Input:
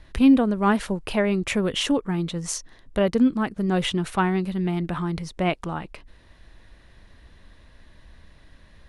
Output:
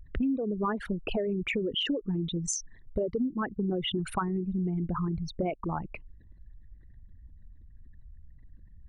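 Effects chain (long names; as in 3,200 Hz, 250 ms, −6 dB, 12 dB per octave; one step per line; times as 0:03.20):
spectral envelope exaggerated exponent 3
downward compressor 6 to 1, threshold −27 dBFS, peak gain reduction 14.5 dB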